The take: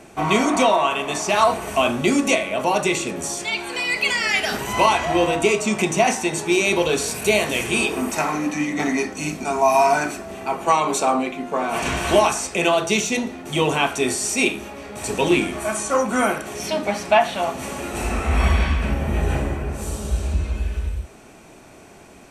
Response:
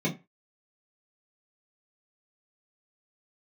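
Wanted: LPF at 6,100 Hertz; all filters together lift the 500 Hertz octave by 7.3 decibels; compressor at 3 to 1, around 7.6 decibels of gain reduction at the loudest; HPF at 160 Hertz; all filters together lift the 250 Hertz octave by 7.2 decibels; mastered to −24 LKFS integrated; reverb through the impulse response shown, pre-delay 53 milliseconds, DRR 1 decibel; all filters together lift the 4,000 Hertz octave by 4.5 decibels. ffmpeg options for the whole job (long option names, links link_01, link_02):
-filter_complex "[0:a]highpass=160,lowpass=6100,equalizer=frequency=250:width_type=o:gain=7,equalizer=frequency=500:width_type=o:gain=8,equalizer=frequency=4000:width_type=o:gain=6.5,acompressor=threshold=-16dB:ratio=3,asplit=2[link_01][link_02];[1:a]atrim=start_sample=2205,adelay=53[link_03];[link_02][link_03]afir=irnorm=-1:irlink=0,volume=-10dB[link_04];[link_01][link_04]amix=inputs=2:normalize=0,volume=-11dB"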